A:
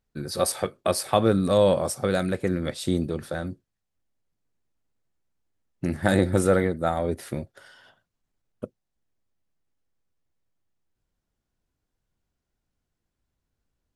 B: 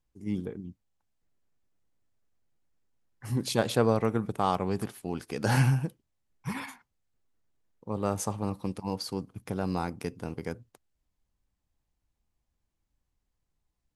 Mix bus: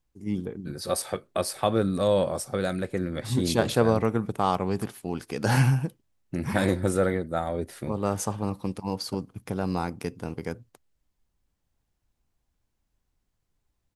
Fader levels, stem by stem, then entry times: -3.5, +2.5 dB; 0.50, 0.00 s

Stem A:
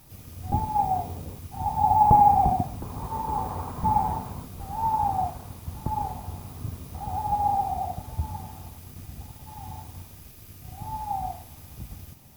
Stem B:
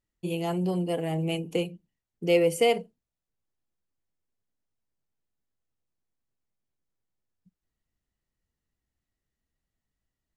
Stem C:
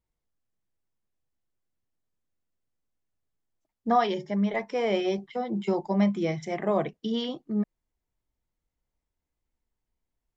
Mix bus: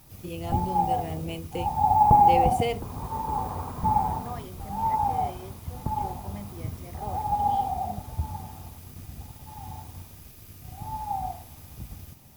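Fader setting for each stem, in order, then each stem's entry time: -0.5, -6.0, -17.0 dB; 0.00, 0.00, 0.35 s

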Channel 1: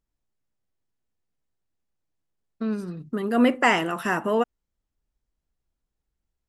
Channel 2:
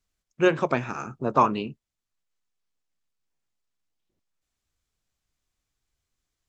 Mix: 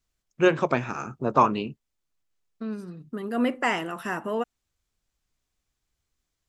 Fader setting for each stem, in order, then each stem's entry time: -5.5, +0.5 dB; 0.00, 0.00 s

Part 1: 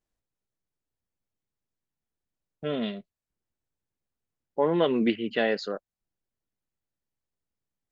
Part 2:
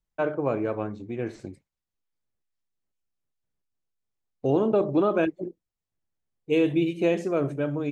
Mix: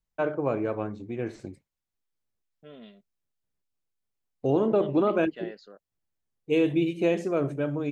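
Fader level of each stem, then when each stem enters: -17.5, -1.0 dB; 0.00, 0.00 s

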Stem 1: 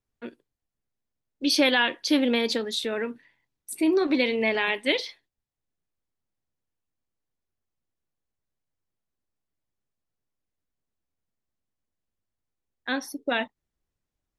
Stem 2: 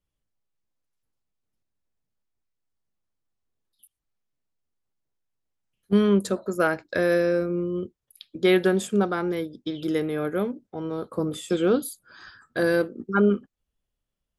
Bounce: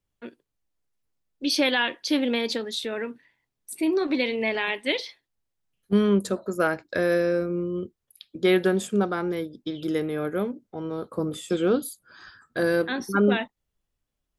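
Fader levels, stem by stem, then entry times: -1.5, -1.0 dB; 0.00, 0.00 s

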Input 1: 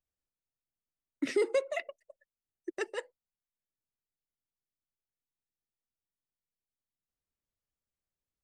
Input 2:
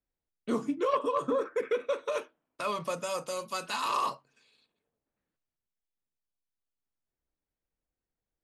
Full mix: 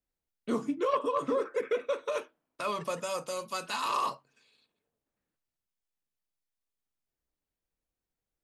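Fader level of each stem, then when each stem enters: -16.0, -0.5 dB; 0.00, 0.00 s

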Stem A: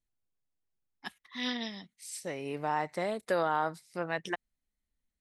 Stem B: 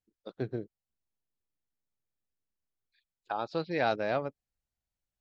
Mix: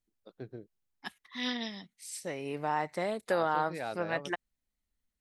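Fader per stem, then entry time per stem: 0.0, -9.5 dB; 0.00, 0.00 s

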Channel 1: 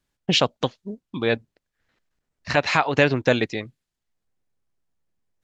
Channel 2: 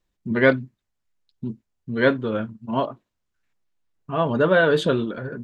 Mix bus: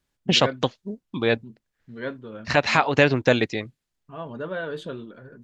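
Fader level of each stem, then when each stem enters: +0.5, -13.5 dB; 0.00, 0.00 s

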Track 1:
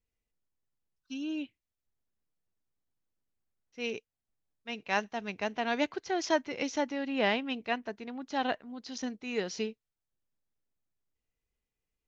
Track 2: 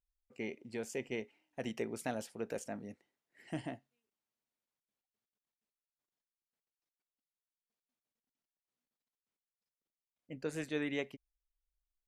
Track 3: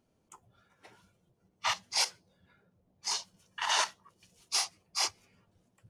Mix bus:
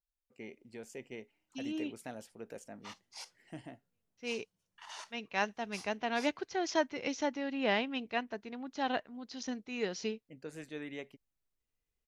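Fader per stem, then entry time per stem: -2.5, -6.5, -19.0 dB; 0.45, 0.00, 1.20 s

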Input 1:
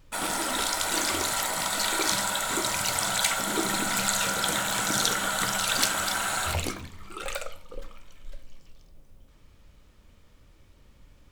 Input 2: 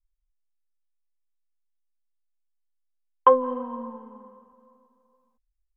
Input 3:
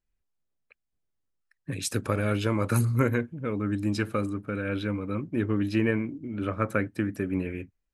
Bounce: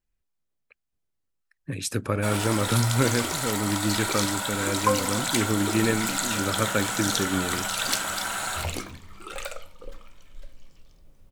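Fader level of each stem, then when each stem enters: -1.5, -7.0, +1.0 dB; 2.10, 1.60, 0.00 s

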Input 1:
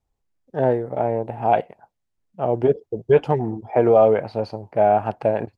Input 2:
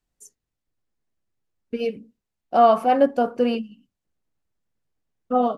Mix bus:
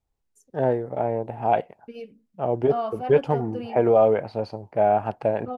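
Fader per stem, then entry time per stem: -3.0, -13.0 dB; 0.00, 0.15 s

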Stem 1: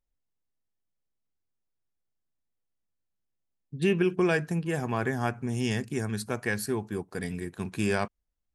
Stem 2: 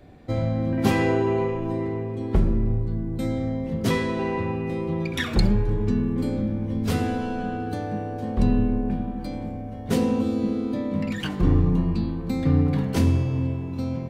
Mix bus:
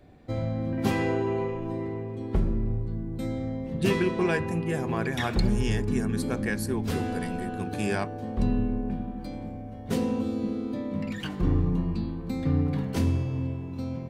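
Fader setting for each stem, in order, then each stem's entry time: -1.5, -5.0 dB; 0.00, 0.00 s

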